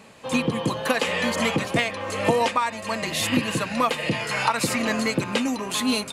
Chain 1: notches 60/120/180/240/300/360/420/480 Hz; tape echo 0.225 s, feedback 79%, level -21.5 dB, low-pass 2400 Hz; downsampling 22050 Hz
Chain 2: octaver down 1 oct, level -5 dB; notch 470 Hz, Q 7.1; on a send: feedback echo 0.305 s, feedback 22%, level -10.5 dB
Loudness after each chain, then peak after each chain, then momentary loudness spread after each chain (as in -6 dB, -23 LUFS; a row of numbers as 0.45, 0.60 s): -24.0, -23.5 LUFS; -5.5, -6.0 dBFS; 4, 3 LU